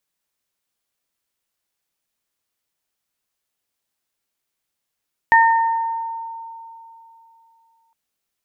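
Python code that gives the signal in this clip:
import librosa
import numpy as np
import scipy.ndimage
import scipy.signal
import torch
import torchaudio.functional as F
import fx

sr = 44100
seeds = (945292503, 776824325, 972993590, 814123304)

y = fx.additive(sr, length_s=2.61, hz=912.0, level_db=-9.5, upper_db=(-1,), decay_s=3.03, upper_decays_s=(0.97,))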